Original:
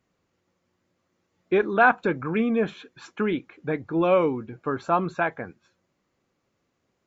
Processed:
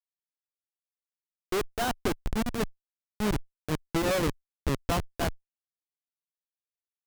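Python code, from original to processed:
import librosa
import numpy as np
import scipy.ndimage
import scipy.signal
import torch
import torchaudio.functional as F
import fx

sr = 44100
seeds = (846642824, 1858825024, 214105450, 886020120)

y = fx.schmitt(x, sr, flips_db=-20.5)
y = fx.cheby_harmonics(y, sr, harmonics=(4,), levels_db=(-12,), full_scale_db=-20.5)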